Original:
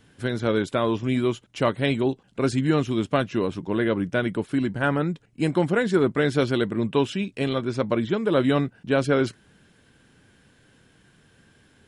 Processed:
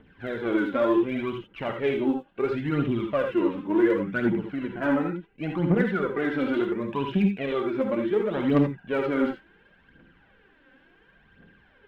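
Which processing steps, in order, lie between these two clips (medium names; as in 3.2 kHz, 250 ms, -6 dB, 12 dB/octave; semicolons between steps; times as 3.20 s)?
harmonic-percussive split percussive -7 dB; low-pass 2.8 kHz 24 dB/octave; peaking EQ 110 Hz -14 dB 0.74 oct; in parallel at +2.5 dB: peak limiter -20.5 dBFS, peak gain reduction 8.5 dB; on the sum: phaser 0.7 Hz, delay 4 ms, feedback 71%; saturation -6 dBFS, distortion -21 dB; gated-style reverb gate 100 ms rising, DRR 3.5 dB; trim -7.5 dB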